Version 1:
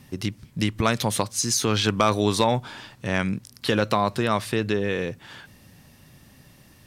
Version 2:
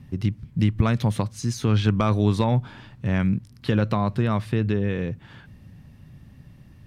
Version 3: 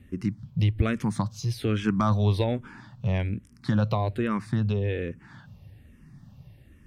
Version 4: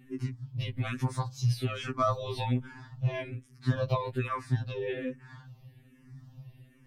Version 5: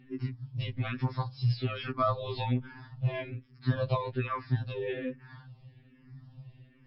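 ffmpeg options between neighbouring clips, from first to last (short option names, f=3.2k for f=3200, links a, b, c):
-af "bass=f=250:g=13,treble=f=4k:g=-10,volume=-5dB"
-filter_complex "[0:a]asplit=2[a][b];[b]afreqshift=-1.2[c];[a][c]amix=inputs=2:normalize=1"
-af "afftfilt=real='re*2.45*eq(mod(b,6),0)':imag='im*2.45*eq(mod(b,6),0)':win_size=2048:overlap=0.75"
-ar 12000 -c:a libmp3lame -b:a 40k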